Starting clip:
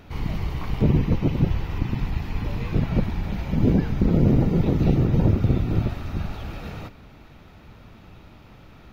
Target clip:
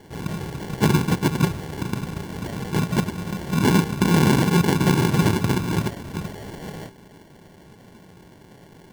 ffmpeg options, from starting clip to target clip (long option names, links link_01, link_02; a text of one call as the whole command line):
ffmpeg -i in.wav -af "highpass=130,equalizer=frequency=170:width_type=q:width=4:gain=6,equalizer=frequency=390:width_type=q:width=4:gain=7,equalizer=frequency=860:width_type=q:width=4:gain=5,lowpass=frequency=3300:width=0.5412,lowpass=frequency=3300:width=1.3066,acrusher=samples=35:mix=1:aa=0.000001" out.wav